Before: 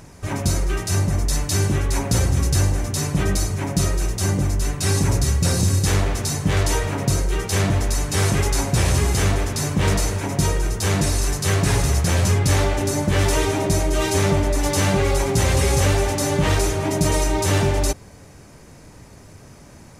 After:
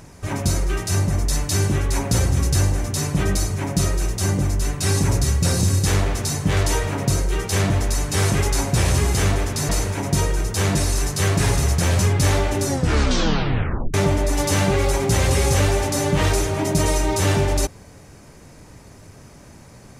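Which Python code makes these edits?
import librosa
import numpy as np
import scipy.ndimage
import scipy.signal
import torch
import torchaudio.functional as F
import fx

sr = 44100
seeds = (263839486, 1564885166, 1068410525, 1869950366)

y = fx.edit(x, sr, fx.cut(start_s=9.69, length_s=0.26),
    fx.tape_stop(start_s=12.9, length_s=1.3), tone=tone)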